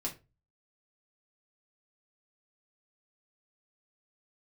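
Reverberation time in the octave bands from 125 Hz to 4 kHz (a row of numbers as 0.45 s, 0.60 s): 0.55 s, 0.30 s, 0.30 s, 0.25 s, 0.25 s, 0.20 s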